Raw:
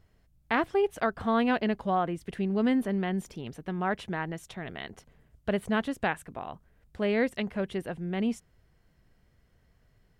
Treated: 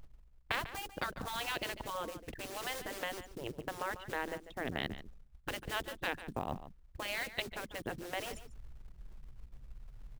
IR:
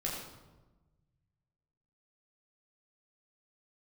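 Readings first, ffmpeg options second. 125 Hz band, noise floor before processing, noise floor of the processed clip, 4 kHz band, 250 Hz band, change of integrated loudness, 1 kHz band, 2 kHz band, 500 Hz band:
−10.5 dB, −66 dBFS, −60 dBFS, +1.0 dB, −17.5 dB, −10.0 dB, −8.5 dB, −4.5 dB, −12.0 dB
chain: -filter_complex "[0:a]anlmdn=1.58,acrossover=split=390|3300[link_01][link_02][link_03];[link_02]acompressor=threshold=-42dB:ratio=5[link_04];[link_01][link_04][link_03]amix=inputs=3:normalize=0,acrusher=bits=6:mode=log:mix=0:aa=0.000001,areverse,acompressor=mode=upward:threshold=-39dB:ratio=2.5,areverse,afftfilt=real='re*lt(hypot(re,im),0.0631)':imag='im*lt(hypot(re,im),0.0631)':win_size=1024:overlap=0.75,asplit=2[link_05][link_06];[link_06]adelay=145.8,volume=-13dB,highshelf=frequency=4000:gain=-3.28[link_07];[link_05][link_07]amix=inputs=2:normalize=0,volume=6dB"

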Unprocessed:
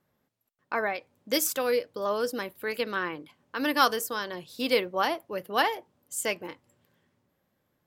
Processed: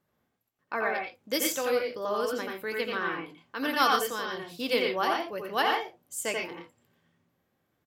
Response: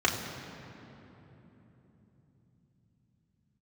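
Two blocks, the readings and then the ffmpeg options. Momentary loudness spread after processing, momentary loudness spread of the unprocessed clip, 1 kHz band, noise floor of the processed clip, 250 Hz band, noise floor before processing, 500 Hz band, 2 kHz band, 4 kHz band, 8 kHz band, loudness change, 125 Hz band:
10 LU, 12 LU, +0.5 dB, −78 dBFS, −1.5 dB, −77 dBFS, −1.0 dB, +0.5 dB, 0.0 dB, −1.5 dB, −0.5 dB, −1.0 dB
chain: -filter_complex "[0:a]asplit=2[link_01][link_02];[link_02]adelay=18,volume=-13.5dB[link_03];[link_01][link_03]amix=inputs=2:normalize=0,asplit=2[link_04][link_05];[1:a]atrim=start_sample=2205,afade=type=out:start_time=0.13:duration=0.01,atrim=end_sample=6174,adelay=84[link_06];[link_05][link_06]afir=irnorm=-1:irlink=0,volume=-12dB[link_07];[link_04][link_07]amix=inputs=2:normalize=0,volume=-3dB"

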